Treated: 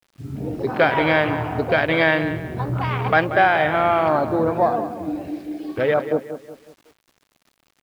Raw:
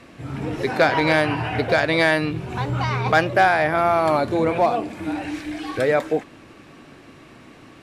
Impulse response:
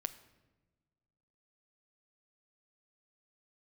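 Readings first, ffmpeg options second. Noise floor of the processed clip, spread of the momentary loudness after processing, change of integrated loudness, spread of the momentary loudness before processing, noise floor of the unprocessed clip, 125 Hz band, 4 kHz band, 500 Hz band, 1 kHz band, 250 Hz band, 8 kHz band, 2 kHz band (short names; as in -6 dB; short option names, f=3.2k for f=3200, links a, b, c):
-68 dBFS, 13 LU, 0.0 dB, 11 LU, -46 dBFS, 0.0 dB, -2.0 dB, +0.5 dB, +0.5 dB, +0.5 dB, under -10 dB, +0.5 dB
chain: -filter_complex "[0:a]afwtdn=0.0562,highshelf=f=6.2k:t=q:w=3:g=-8.5,asplit=2[a][b];[b]adelay=184,lowpass=f=3.4k:p=1,volume=-11dB,asplit=2[c][d];[d]adelay=184,lowpass=f=3.4k:p=1,volume=0.41,asplit=2[e][f];[f]adelay=184,lowpass=f=3.4k:p=1,volume=0.41,asplit=2[g][h];[h]adelay=184,lowpass=f=3.4k:p=1,volume=0.41[i];[c][e][g][i]amix=inputs=4:normalize=0[j];[a][j]amix=inputs=2:normalize=0,acrusher=bits=8:mix=0:aa=0.000001"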